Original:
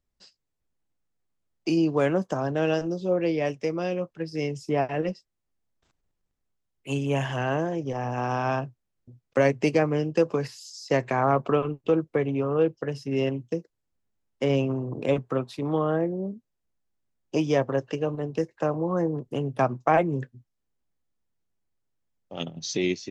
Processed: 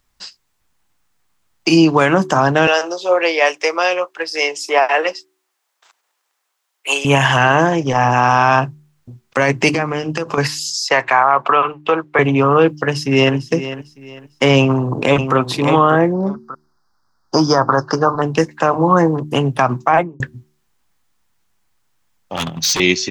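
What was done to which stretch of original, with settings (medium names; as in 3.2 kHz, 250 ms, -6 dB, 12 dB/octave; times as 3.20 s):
2.67–7.05 s: high-pass 450 Hz 24 dB/octave
9.69–10.38 s: compression 16:1, threshold -27 dBFS
10.89–12.19 s: three-band isolator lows -16 dB, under 470 Hz, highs -12 dB, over 3.5 kHz
12.82–13.36 s: echo throw 450 ms, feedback 30%, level -13 dB
14.59–15.36 s: echo throw 590 ms, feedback 15%, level -8 dB
16.14–18.22 s: FFT filter 520 Hz 0 dB, 1.4 kHz +10 dB, 2.6 kHz -29 dB, 4.9 kHz +8 dB, 7.1 kHz -9 dB
19.79–20.20 s: studio fade out
22.36–22.80 s: overload inside the chain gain 33 dB
whole clip: resonant low shelf 720 Hz -7 dB, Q 1.5; de-hum 74.99 Hz, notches 5; loudness maximiser +21 dB; trim -1 dB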